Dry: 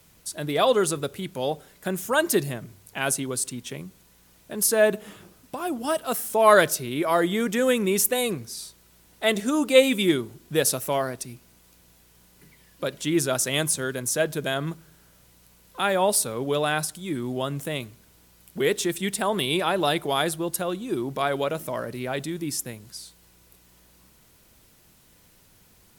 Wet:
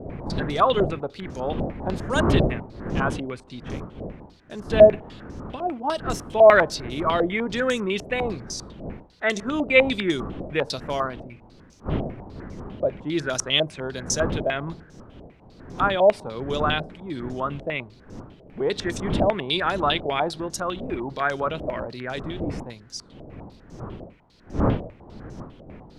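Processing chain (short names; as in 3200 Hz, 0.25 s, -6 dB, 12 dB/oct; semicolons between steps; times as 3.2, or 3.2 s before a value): wind noise 280 Hz -30 dBFS; stepped low-pass 10 Hz 640–6000 Hz; gain -3 dB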